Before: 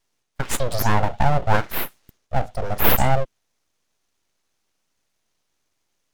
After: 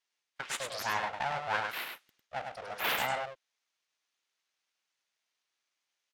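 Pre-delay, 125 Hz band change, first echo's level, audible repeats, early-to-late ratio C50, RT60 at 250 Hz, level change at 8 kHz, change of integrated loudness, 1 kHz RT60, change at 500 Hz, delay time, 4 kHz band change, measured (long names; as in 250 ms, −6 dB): no reverb audible, −27.5 dB, −5.0 dB, 1, no reverb audible, no reverb audible, −11.0 dB, −12.0 dB, no reverb audible, −14.5 dB, 102 ms, −5.0 dB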